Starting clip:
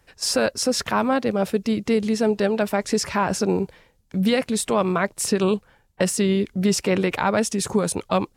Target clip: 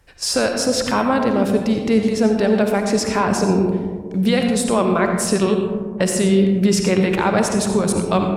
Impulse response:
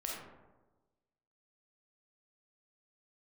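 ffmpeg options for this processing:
-filter_complex "[0:a]asplit=2[a][b];[1:a]atrim=start_sample=2205,asetrate=24255,aresample=44100,lowshelf=f=100:g=12[c];[b][c]afir=irnorm=-1:irlink=0,volume=-2.5dB[d];[a][d]amix=inputs=2:normalize=0,volume=-3dB"

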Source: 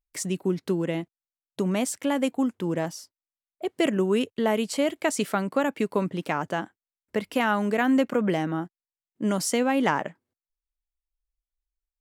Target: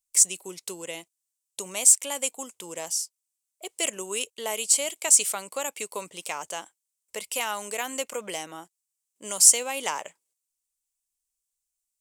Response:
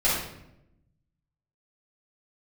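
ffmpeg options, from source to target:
-af "equalizer=f=125:t=o:w=1:g=-7,equalizer=f=250:t=o:w=1:g=-6,equalizer=f=500:t=o:w=1:g=8,equalizer=f=1k:t=o:w=1:g=9,equalizer=f=2k:t=o:w=1:g=7,equalizer=f=4k:t=o:w=1:g=-5,equalizer=f=8k:t=o:w=1:g=12,aexciter=amount=9.7:drive=5.7:freq=2.6k,volume=-16dB"

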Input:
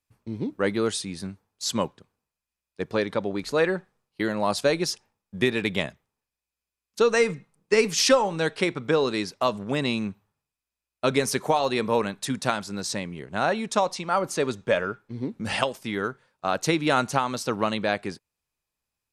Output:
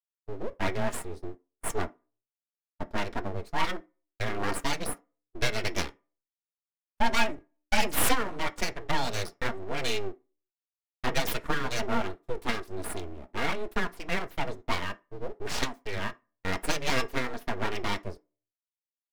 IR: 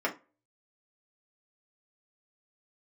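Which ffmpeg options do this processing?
-filter_complex "[0:a]afwtdn=0.0178,agate=range=-34dB:threshold=-37dB:ratio=16:detection=peak,equalizer=f=640:w=0.53:g=-6,aecho=1:1:4.2:0.61,afreqshift=-15,aeval=exprs='abs(val(0))':c=same,asplit=2[a][b];[1:a]atrim=start_sample=2205,highshelf=f=4.9k:g=10,adelay=12[c];[b][c]afir=irnorm=-1:irlink=0,volume=-21dB[d];[a][d]amix=inputs=2:normalize=0"

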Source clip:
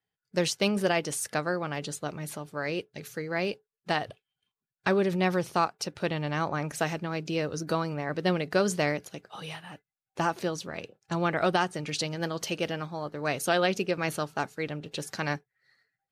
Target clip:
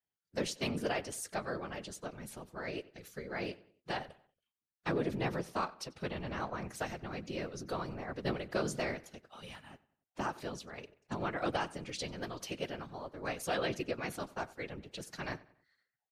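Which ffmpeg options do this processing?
-filter_complex "[0:a]highpass=f=53:p=1,afftfilt=real='hypot(re,im)*cos(2*PI*random(0))':imag='hypot(re,im)*sin(2*PI*random(1))':win_size=512:overlap=0.75,aeval=exprs='0.141*(cos(1*acos(clip(val(0)/0.141,-1,1)))-cos(1*PI/2))+0.00447*(cos(3*acos(clip(val(0)/0.141,-1,1)))-cos(3*PI/2))':c=same,asplit=3[a][b][c];[b]asetrate=33038,aresample=44100,atempo=1.33484,volume=-15dB[d];[c]asetrate=37084,aresample=44100,atempo=1.18921,volume=-14dB[e];[a][d][e]amix=inputs=3:normalize=0,asplit=2[f][g];[g]adelay=93,lowpass=f=4k:p=1,volume=-20dB,asplit=2[h][i];[i]adelay=93,lowpass=f=4k:p=1,volume=0.43,asplit=2[j][k];[k]adelay=93,lowpass=f=4k:p=1,volume=0.43[l];[h][j][l]amix=inputs=3:normalize=0[m];[f][m]amix=inputs=2:normalize=0,volume=-2.5dB"

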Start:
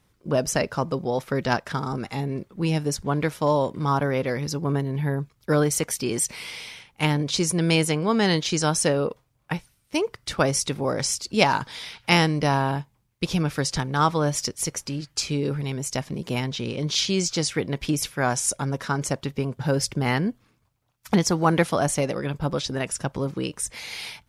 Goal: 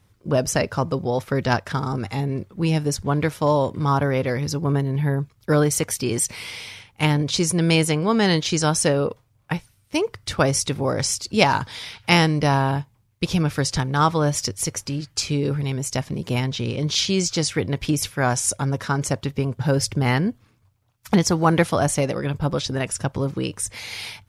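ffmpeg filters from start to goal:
-af "equalizer=f=97:t=o:w=0.49:g=11.5,volume=2dB"

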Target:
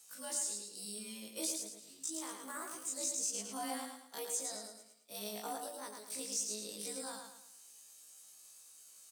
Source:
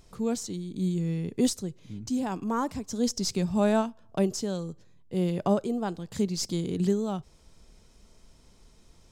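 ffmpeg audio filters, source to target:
-filter_complex "[0:a]afftfilt=real='re':imag='-im':win_size=2048:overlap=0.75,highpass=f=140:p=1,equalizer=f=6.9k:w=5.3:g=5.5,acrossover=split=220|710|5900[a][b][c][d];[c]alimiter=level_in=13.5dB:limit=-24dB:level=0:latency=1:release=493,volume=-13.5dB[e];[d]acompressor=threshold=-59dB:ratio=16[f];[a][b][e][f]amix=inputs=4:normalize=0,aderivative,asetrate=53981,aresample=44100,atempo=0.816958,aecho=1:1:109|218|327|436|545:0.562|0.214|0.0812|0.0309|0.0117,volume=12dB"

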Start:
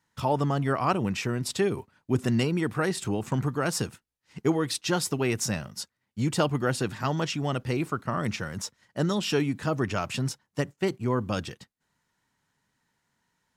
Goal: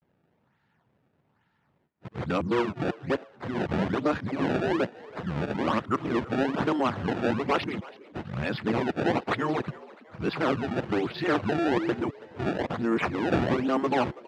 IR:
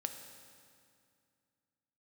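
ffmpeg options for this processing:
-filter_complex "[0:a]areverse,aemphasis=mode=reproduction:type=riaa,afftfilt=real='re*lt(hypot(re,im),0.631)':imag='im*lt(hypot(re,im),0.631)':win_size=1024:overlap=0.75,adynamicequalizer=threshold=0.01:dfrequency=350:dqfactor=4.5:tfrequency=350:tqfactor=4.5:attack=5:release=100:ratio=0.375:range=2:mode=boostabove:tftype=bell,aresample=11025,asoftclip=type=tanh:threshold=-17.5dB,aresample=44100,crystalizer=i=9.5:c=0,acrusher=samples=23:mix=1:aa=0.000001:lfo=1:lforange=36.8:lforate=1.2,asetrate=41895,aresample=44100,highpass=120,lowpass=2.6k,asplit=4[a][b][c][d];[b]adelay=328,afreqshift=94,volume=-20dB[e];[c]adelay=656,afreqshift=188,volume=-27.5dB[f];[d]adelay=984,afreqshift=282,volume=-35.1dB[g];[a][e][f][g]amix=inputs=4:normalize=0"

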